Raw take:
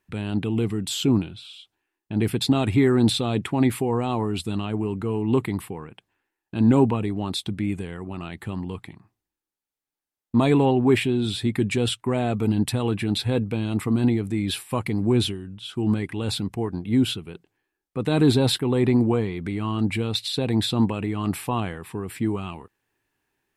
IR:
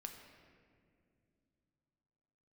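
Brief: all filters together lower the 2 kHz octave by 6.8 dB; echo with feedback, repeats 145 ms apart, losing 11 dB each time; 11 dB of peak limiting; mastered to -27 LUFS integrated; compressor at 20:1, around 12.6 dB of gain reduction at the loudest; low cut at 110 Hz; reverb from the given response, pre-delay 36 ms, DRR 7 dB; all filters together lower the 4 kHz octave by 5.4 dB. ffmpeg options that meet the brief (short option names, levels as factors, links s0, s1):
-filter_complex "[0:a]highpass=110,equalizer=f=2000:t=o:g=-7.5,equalizer=f=4000:t=o:g=-4,acompressor=threshold=0.0501:ratio=20,alimiter=level_in=1.26:limit=0.0631:level=0:latency=1,volume=0.794,aecho=1:1:145|290|435:0.282|0.0789|0.0221,asplit=2[s0][s1];[1:a]atrim=start_sample=2205,adelay=36[s2];[s1][s2]afir=irnorm=-1:irlink=0,volume=0.708[s3];[s0][s3]amix=inputs=2:normalize=0,volume=2.51"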